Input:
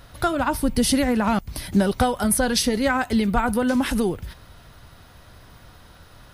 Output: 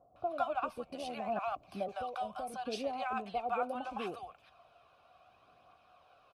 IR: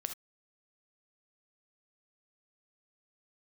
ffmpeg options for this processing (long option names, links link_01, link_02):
-filter_complex "[0:a]asplit=3[link_01][link_02][link_03];[link_01]afade=type=out:start_time=0.63:duration=0.02[link_04];[link_02]tremolo=f=80:d=0.519,afade=type=in:start_time=0.63:duration=0.02,afade=type=out:start_time=1.19:duration=0.02[link_05];[link_03]afade=type=in:start_time=1.19:duration=0.02[link_06];[link_04][link_05][link_06]amix=inputs=3:normalize=0,asettb=1/sr,asplit=3[link_07][link_08][link_09];[link_07]atrim=end=1.884[link_10];[link_08]atrim=start=1.88:end=2.54,asetpts=PTS-STARTPTS,afade=type=in:duration=0.004:curve=qsin,afade=type=out:start_time=0.656:duration=0.004:curve=qsin,acrossover=split=170|3000[link_11][link_12][link_13];[link_12]acompressor=threshold=-24dB:ratio=6[link_14];[link_11][link_14][link_13]amix=inputs=3:normalize=0[link_15];[link_09]atrim=start=2.536[link_16];[link_10][link_15]acrossfade=duration=0.004:curve1=hsin:curve2=qsin[link_17];[link_17][link_16]acrossfade=duration=0.004:curve1=qsin:curve2=hsin,asplit=3[link_18][link_19][link_20];[link_18]bandpass=frequency=730:width_type=q:width=8,volume=0dB[link_21];[link_19]bandpass=frequency=1090:width_type=q:width=8,volume=-6dB[link_22];[link_20]bandpass=frequency=2440:width_type=q:width=8,volume=-9dB[link_23];[link_21][link_22][link_23]amix=inputs=3:normalize=0,aphaser=in_gain=1:out_gain=1:delay=2.3:decay=0.34:speed=0.72:type=triangular,acrossover=split=740[link_24][link_25];[link_25]adelay=160[link_26];[link_24][link_26]amix=inputs=2:normalize=0"